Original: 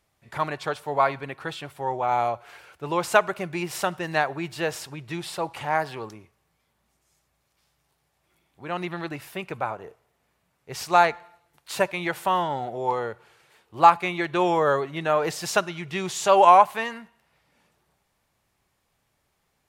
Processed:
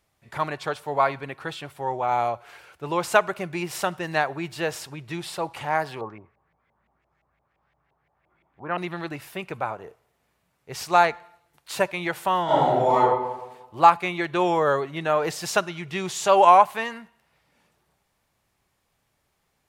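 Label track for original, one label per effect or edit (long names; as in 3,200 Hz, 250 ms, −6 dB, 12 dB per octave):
6.010000	8.780000	auto-filter low-pass saw up 5.8 Hz 680–2,400 Hz
12.440000	12.970000	thrown reverb, RT60 1.1 s, DRR −10 dB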